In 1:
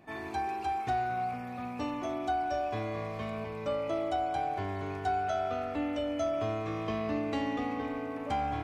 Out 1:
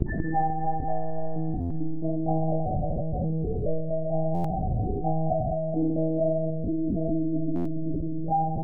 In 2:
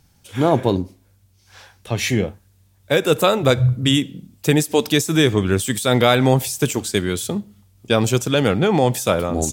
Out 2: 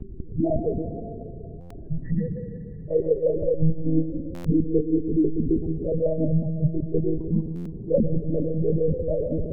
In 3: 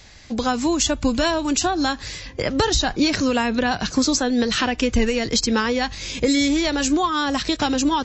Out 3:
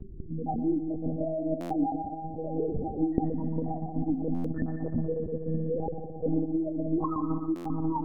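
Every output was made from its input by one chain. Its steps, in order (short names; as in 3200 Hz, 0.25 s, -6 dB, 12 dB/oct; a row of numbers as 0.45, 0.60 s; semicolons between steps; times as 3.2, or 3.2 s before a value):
median filter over 15 samples; steep low-pass 2300 Hz 72 dB/oct; vocal rider within 4 dB 0.5 s; loudest bins only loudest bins 1; buzz 50 Hz, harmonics 8, -43 dBFS -5 dB/oct; on a send: multi-head echo 61 ms, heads second and third, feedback 69%, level -11.5 dB; on the sum: monotone LPC vocoder at 8 kHz 160 Hz; stuck buffer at 1.6/4.34/7.55, samples 512, times 8; normalise peaks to -9 dBFS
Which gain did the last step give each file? +13.0, +4.0, -1.5 dB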